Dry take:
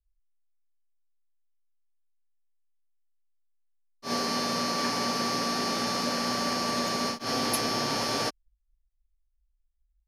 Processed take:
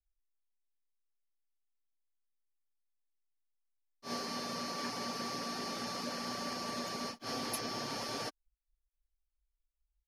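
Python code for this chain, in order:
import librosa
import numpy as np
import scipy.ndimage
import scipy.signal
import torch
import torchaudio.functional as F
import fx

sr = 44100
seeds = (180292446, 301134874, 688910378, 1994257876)

y = fx.dereverb_blind(x, sr, rt60_s=0.53)
y = F.gain(torch.from_numpy(y), -9.0).numpy()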